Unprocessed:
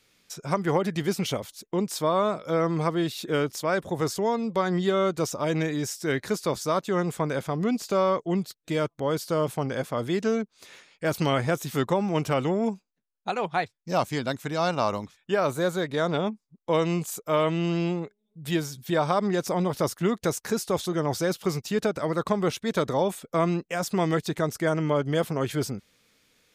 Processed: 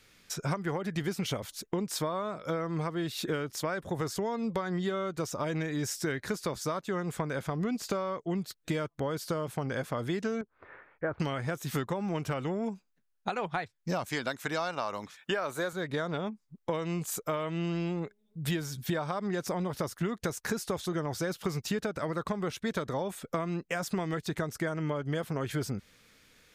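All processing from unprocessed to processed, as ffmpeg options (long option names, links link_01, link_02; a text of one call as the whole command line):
ffmpeg -i in.wav -filter_complex "[0:a]asettb=1/sr,asplit=3[link_01][link_02][link_03];[link_01]atrim=end=10.414[link_04];[link_02]atrim=start=10.41:end=11.2,asetpts=PTS-STARTPTS,afade=type=in:duration=0.004:curve=qsin,afade=type=out:start_time=0.786:duration=0.004:curve=qsin,lowpass=frequency=1600:width=0.5412,lowpass=frequency=1600:width=1.3066,equalizer=frequency=190:width_type=o:width=0.76:gain=-10[link_05];[link_03]atrim=start=11.196[link_06];[link_04][link_05]acrossfade=duration=0.004:curve1=hsin:curve2=qsin[link_07];[link_07][link_06]acrossfade=duration=0.004:curve1=qsin:curve2=hsin,asettb=1/sr,asplit=3[link_08][link_09][link_10];[link_08]atrim=end=14.064[link_11];[link_09]atrim=start=14.06:end=15.73,asetpts=PTS-STARTPTS,afade=type=in:duration=0.004:curve=qsin,afade=type=out:start_time=1.666:duration=0.004:curve=qsin,highpass=frequency=480:poles=1,acontrast=79[link_12];[link_10]atrim=start=15.726[link_13];[link_11][link_12]acrossfade=duration=0.004:curve1=hsin:curve2=qsin[link_14];[link_14][link_13]acrossfade=duration=0.004:curve1=qsin:curve2=hsin,equalizer=frequency=1600:width=1.6:gain=4.5,acompressor=threshold=-31dB:ratio=12,lowshelf=frequency=100:gain=8.5,volume=2dB" out.wav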